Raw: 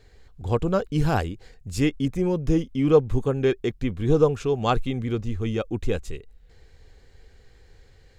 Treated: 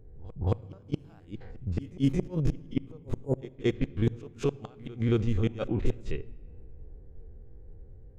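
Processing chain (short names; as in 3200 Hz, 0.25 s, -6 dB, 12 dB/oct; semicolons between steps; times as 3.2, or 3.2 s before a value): stepped spectrum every 50 ms; low-pass opened by the level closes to 320 Hz, open at -21.5 dBFS; spectral gain 3.24–3.55, 990–6700 Hz -25 dB; in parallel at +0.5 dB: compressor 10:1, threshold -35 dBFS, peak gain reduction 22 dB; on the sum: flipped gate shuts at -14 dBFS, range -35 dB; reverse echo 0.224 s -19.5 dB; on a send at -18.5 dB: reverb RT60 1.8 s, pre-delay 6 ms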